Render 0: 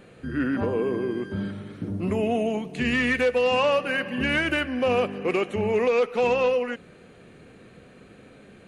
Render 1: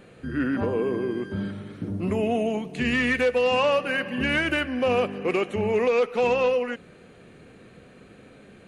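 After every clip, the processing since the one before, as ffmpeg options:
ffmpeg -i in.wav -af anull out.wav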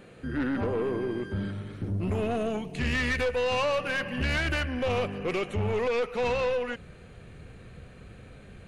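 ffmpeg -i in.wav -af "asubboost=boost=7:cutoff=97,aeval=exprs='(tanh(14.1*val(0)+0.25)-tanh(0.25))/14.1':channel_layout=same" out.wav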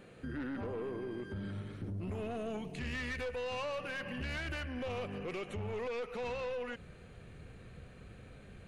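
ffmpeg -i in.wav -af "alimiter=level_in=4dB:limit=-24dB:level=0:latency=1:release=92,volume=-4dB,volume=-5dB" out.wav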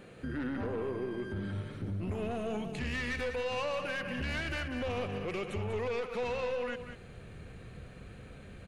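ffmpeg -i in.wav -af "aecho=1:1:193:0.355,volume=3.5dB" out.wav

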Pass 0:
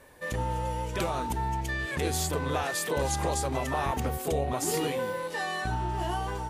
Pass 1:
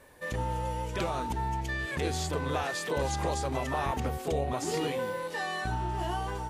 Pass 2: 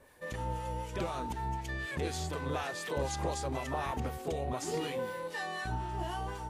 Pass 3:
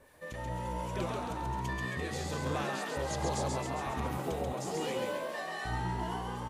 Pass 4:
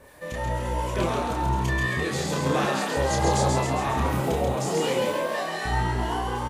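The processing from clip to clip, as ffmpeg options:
ffmpeg -i in.wav -filter_complex "[0:a]acrossover=split=7100[link_01][link_02];[link_02]acompressor=threshold=-51dB:ratio=4:attack=1:release=60[link_03];[link_01][link_03]amix=inputs=2:normalize=0,volume=-1.5dB" out.wav
ffmpeg -i in.wav -filter_complex "[0:a]acrossover=split=960[link_01][link_02];[link_01]aeval=exprs='val(0)*(1-0.5/2+0.5/2*cos(2*PI*4*n/s))':channel_layout=same[link_03];[link_02]aeval=exprs='val(0)*(1-0.5/2-0.5/2*cos(2*PI*4*n/s))':channel_layout=same[link_04];[link_03][link_04]amix=inputs=2:normalize=0,volume=-2dB" out.wav
ffmpeg -i in.wav -filter_complex "[0:a]tremolo=f=1.2:d=0.36,asplit=9[link_01][link_02][link_03][link_04][link_05][link_06][link_07][link_08][link_09];[link_02]adelay=135,afreqshift=60,volume=-3dB[link_10];[link_03]adelay=270,afreqshift=120,volume=-8dB[link_11];[link_04]adelay=405,afreqshift=180,volume=-13.1dB[link_12];[link_05]adelay=540,afreqshift=240,volume=-18.1dB[link_13];[link_06]adelay=675,afreqshift=300,volume=-23.1dB[link_14];[link_07]adelay=810,afreqshift=360,volume=-28.2dB[link_15];[link_08]adelay=945,afreqshift=420,volume=-33.2dB[link_16];[link_09]adelay=1080,afreqshift=480,volume=-38.3dB[link_17];[link_01][link_10][link_11][link_12][link_13][link_14][link_15][link_16][link_17]amix=inputs=9:normalize=0" out.wav
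ffmpeg -i in.wav -filter_complex "[0:a]asplit=2[link_01][link_02];[link_02]adelay=30,volume=-3.5dB[link_03];[link_01][link_03]amix=inputs=2:normalize=0,volume=8.5dB" out.wav

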